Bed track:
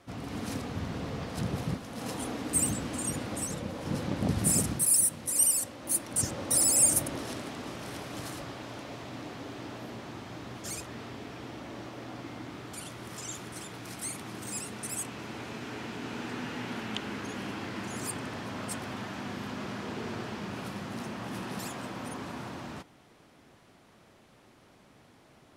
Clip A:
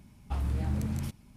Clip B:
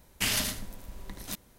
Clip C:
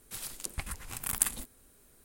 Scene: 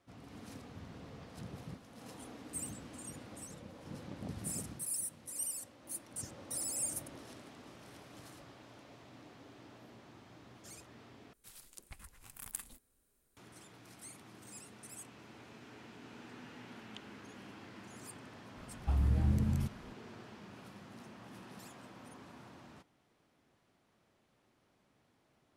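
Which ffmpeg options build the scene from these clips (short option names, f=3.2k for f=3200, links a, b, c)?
-filter_complex "[0:a]volume=-14.5dB[a];[1:a]lowshelf=f=470:g=7[b];[a]asplit=2[c][d];[c]atrim=end=11.334[e];[3:a]atrim=end=2.04,asetpts=PTS-STARTPTS,volume=-15dB[f];[d]atrim=start=13.366[g];[b]atrim=end=1.36,asetpts=PTS-STARTPTS,volume=-6dB,afade=t=in:d=0.004:c=hsin,afade=t=out:st=1.356:d=0.004:c=hsin,adelay=18570[h];[e][f]acrossfade=d=0.004:c1=hsin:c2=hsin[i];[i][g]acrossfade=d=0.004:c1=hsin:c2=hsin[j];[j][h]amix=inputs=2:normalize=0"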